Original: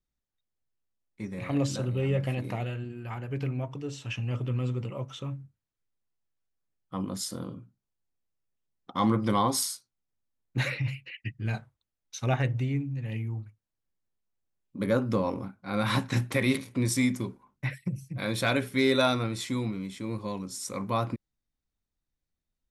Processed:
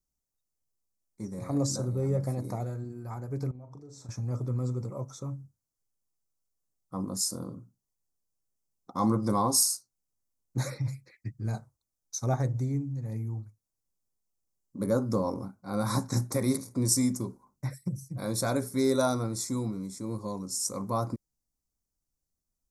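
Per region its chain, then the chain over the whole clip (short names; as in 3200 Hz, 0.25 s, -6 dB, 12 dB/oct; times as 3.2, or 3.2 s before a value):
3.51–4.09 high shelf 4600 Hz -9.5 dB + compressor 16:1, threshold -43 dBFS + doubler 40 ms -9 dB
whole clip: Chebyshev band-stop 1300–6000 Hz, order 2; resonant high shelf 2100 Hz +6.5 dB, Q 3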